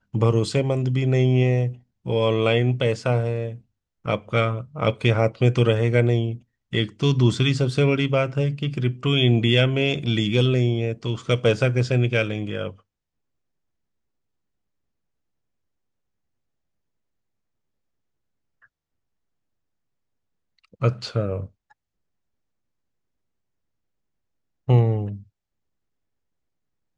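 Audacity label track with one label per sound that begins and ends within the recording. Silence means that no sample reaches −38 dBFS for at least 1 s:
20.740000	21.460000	sound
24.680000	25.210000	sound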